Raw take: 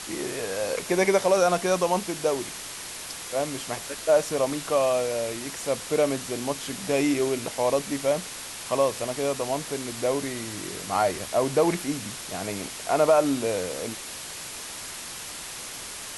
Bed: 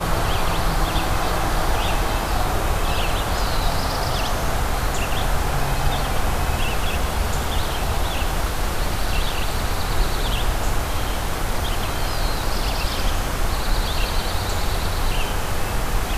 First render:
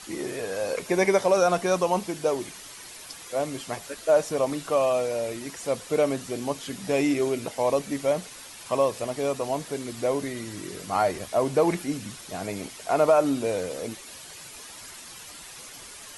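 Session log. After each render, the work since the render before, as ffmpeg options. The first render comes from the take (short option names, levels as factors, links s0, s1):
-af "afftdn=nr=9:nf=-38"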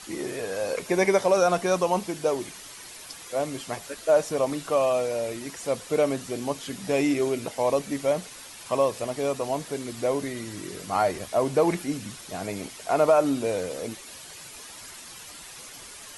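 -af anull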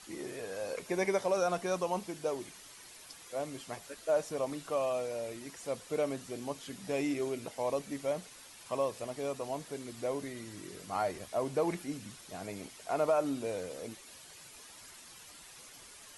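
-af "volume=0.335"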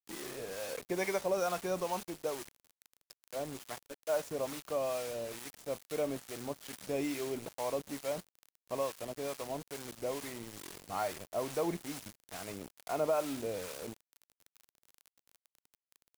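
-filter_complex "[0:a]acrusher=bits=6:mix=0:aa=0.000001,acrossover=split=690[s0][s1];[s0]aeval=exprs='val(0)*(1-0.5/2+0.5/2*cos(2*PI*2.3*n/s))':c=same[s2];[s1]aeval=exprs='val(0)*(1-0.5/2-0.5/2*cos(2*PI*2.3*n/s))':c=same[s3];[s2][s3]amix=inputs=2:normalize=0"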